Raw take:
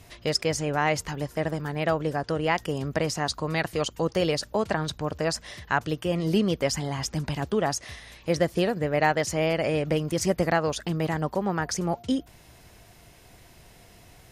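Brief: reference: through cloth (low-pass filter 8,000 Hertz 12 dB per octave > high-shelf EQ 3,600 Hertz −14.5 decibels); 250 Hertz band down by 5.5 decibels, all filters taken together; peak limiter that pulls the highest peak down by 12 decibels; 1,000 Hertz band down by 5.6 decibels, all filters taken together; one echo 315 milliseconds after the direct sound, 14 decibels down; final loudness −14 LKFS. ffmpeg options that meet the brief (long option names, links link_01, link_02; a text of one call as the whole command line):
ffmpeg -i in.wav -af "equalizer=frequency=250:width_type=o:gain=-8.5,equalizer=frequency=1000:width_type=o:gain=-6,alimiter=limit=-23.5dB:level=0:latency=1,lowpass=8000,highshelf=frequency=3600:gain=-14.5,aecho=1:1:315:0.2,volume=21dB" out.wav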